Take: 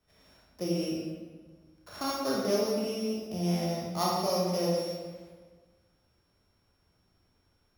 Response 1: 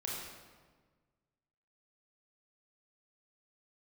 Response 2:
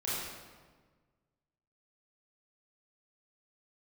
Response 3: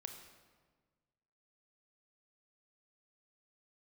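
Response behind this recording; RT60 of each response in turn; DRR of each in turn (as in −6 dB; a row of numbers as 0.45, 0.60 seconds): 1; 1.5, 1.5, 1.5 seconds; −4.5, −9.5, 5.0 decibels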